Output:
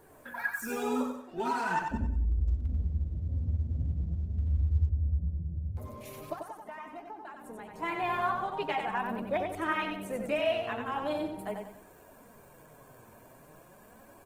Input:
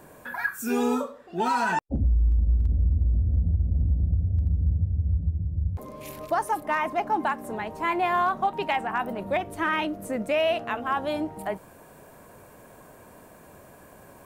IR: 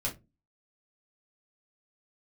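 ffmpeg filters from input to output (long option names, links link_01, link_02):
-filter_complex "[0:a]flanger=delay=2.2:depth=6.7:regen=23:speed=0.42:shape=triangular,asplit=2[link_01][link_02];[1:a]atrim=start_sample=2205,afade=type=out:start_time=0.36:duration=0.01,atrim=end_sample=16317,lowshelf=frequency=280:gain=7[link_03];[link_02][link_03]afir=irnorm=-1:irlink=0,volume=-24.5dB[link_04];[link_01][link_04]amix=inputs=2:normalize=0,asettb=1/sr,asplit=3[link_05][link_06][link_07];[link_05]atrim=end=6.334[link_08];[link_06]atrim=start=6.33:end=7.76,asetpts=PTS-STARTPTS,afade=type=in:duration=0.004:curve=qsin,afade=type=out:start_time=1.426:duration=0.004:curve=qsin,acompressor=threshold=-38dB:ratio=16[link_09];[link_07]atrim=start=7.756[link_10];[link_08][link_09]acrossfade=duration=0.004:curve1=hsin:curve2=qsin[link_11];[link_11][link_10]acrossfade=duration=0.004:curve1=qsin:curve2=hsin,aecho=1:1:92|184|276|368|460:0.562|0.208|0.077|0.0285|0.0105,volume=-3.5dB" -ar 48000 -c:a libopus -b:a 20k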